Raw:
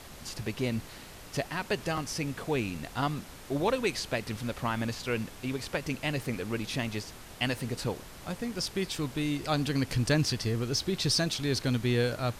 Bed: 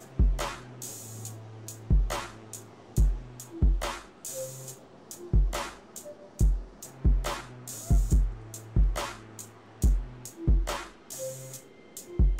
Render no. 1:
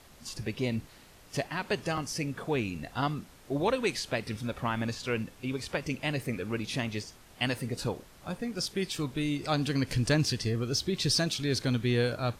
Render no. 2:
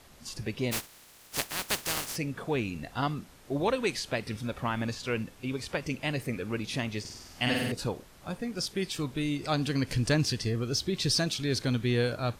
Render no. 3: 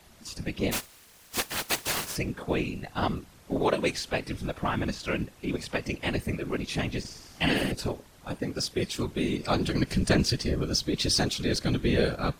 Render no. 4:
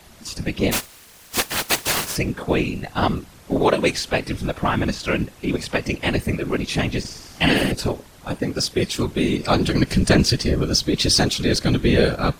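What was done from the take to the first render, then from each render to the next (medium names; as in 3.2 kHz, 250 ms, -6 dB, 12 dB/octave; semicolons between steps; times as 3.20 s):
noise print and reduce 8 dB
0.71–2.15 s: spectral contrast reduction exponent 0.23; 7.00–7.72 s: flutter echo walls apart 8.4 m, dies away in 1.2 s
in parallel at -9 dB: hysteresis with a dead band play -32 dBFS; on the sum: whisper effect
trim +8 dB; peak limiter -3 dBFS, peak gain reduction 1 dB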